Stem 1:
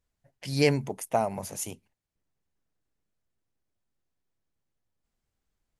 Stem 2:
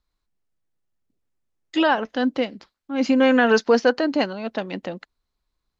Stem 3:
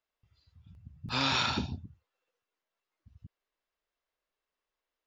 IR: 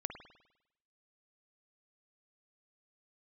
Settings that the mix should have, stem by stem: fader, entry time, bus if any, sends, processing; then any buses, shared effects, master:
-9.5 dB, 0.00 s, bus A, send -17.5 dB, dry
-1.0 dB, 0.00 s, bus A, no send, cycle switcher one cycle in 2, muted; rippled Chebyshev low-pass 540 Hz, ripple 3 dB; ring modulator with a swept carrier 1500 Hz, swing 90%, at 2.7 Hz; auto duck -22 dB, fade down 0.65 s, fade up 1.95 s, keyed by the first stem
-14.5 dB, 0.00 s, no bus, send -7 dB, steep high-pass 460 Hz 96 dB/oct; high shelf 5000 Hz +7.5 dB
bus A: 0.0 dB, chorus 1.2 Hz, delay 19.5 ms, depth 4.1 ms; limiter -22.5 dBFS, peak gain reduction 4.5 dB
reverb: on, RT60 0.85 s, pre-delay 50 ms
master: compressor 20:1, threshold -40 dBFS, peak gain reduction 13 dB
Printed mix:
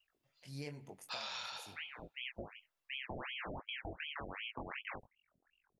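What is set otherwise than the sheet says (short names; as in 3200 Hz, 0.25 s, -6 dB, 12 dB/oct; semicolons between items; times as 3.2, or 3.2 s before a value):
stem 1 -9.5 dB -> -15.5 dB; stem 2 -1.0 dB -> +8.5 dB; stem 3 -14.5 dB -> -7.0 dB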